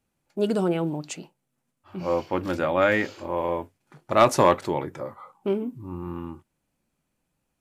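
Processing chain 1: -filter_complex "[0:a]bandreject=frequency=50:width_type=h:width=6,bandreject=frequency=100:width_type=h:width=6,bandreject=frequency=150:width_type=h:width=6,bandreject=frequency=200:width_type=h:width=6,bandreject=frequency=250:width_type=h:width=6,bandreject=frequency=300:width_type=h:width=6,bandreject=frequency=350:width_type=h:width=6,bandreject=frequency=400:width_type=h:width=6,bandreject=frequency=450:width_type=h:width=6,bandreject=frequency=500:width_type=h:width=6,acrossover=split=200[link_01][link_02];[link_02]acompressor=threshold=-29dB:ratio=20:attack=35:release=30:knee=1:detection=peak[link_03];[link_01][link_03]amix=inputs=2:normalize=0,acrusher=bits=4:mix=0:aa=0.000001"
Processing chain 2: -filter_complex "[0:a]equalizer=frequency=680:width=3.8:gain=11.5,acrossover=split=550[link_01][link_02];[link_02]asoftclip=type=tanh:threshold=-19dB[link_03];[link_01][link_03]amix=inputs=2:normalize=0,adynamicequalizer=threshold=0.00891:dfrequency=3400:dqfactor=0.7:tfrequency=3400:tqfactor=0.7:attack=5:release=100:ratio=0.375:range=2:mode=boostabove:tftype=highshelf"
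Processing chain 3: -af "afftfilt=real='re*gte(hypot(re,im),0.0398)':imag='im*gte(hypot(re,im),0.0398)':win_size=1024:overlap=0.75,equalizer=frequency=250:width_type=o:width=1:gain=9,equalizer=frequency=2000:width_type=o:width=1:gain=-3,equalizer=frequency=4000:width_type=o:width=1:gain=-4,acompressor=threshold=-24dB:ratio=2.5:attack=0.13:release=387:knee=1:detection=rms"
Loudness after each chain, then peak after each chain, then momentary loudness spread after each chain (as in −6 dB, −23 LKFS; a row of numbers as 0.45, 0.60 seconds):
−28.5, −24.0, −31.5 LKFS; −8.0, −7.0, −15.5 dBFS; 13, 17, 11 LU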